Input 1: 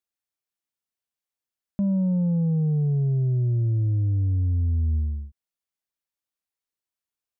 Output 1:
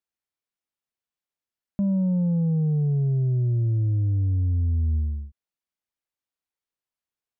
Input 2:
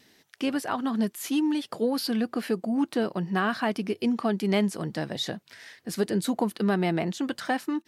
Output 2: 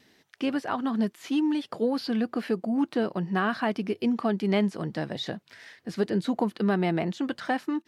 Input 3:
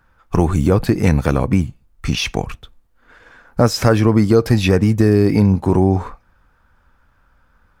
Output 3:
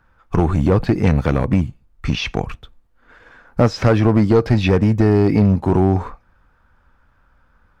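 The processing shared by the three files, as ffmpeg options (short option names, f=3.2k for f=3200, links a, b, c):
-filter_complex "[0:a]acrossover=split=5800[a][b];[b]acompressor=threshold=-49dB:ratio=4:attack=1:release=60[c];[a][c]amix=inputs=2:normalize=0,aeval=exprs='clip(val(0),-1,0.376)':c=same,highshelf=f=5.4k:g=-8"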